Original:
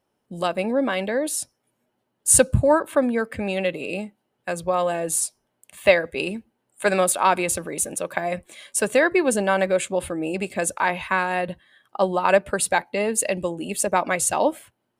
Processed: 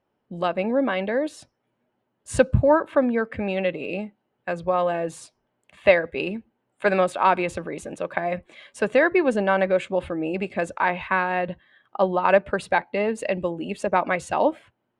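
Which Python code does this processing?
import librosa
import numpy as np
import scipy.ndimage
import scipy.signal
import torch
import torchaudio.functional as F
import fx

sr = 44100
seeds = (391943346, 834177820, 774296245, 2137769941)

y = scipy.signal.sosfilt(scipy.signal.butter(2, 2900.0, 'lowpass', fs=sr, output='sos'), x)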